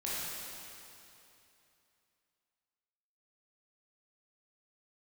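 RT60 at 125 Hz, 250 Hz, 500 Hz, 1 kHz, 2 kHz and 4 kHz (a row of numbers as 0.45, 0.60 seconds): 3.0, 2.8, 2.9, 2.9, 2.8, 2.7 seconds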